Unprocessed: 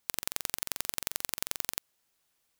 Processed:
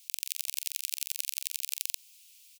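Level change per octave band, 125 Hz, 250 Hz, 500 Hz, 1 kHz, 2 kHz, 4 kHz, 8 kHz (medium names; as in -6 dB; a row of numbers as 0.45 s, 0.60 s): under -40 dB, under -40 dB, under -40 dB, under -40 dB, -3.5 dB, +1.5 dB, +2.0 dB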